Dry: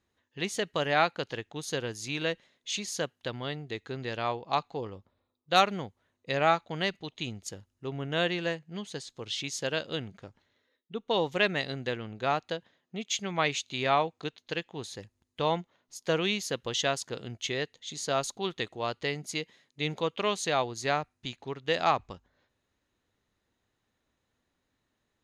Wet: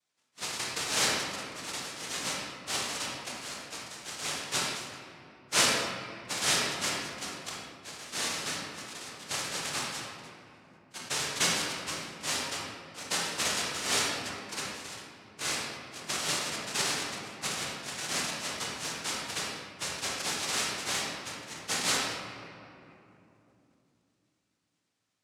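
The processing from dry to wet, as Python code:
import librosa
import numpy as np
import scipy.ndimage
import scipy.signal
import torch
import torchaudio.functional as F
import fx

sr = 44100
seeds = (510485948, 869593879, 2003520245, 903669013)

y = fx.spec_quant(x, sr, step_db=15)
y = fx.highpass(y, sr, hz=1300.0, slope=6)
y = fx.noise_vocoder(y, sr, seeds[0], bands=1)
y = fx.room_shoebox(y, sr, seeds[1], volume_m3=130.0, walls='hard', distance_m=0.39)
y = fx.sustainer(y, sr, db_per_s=46.0)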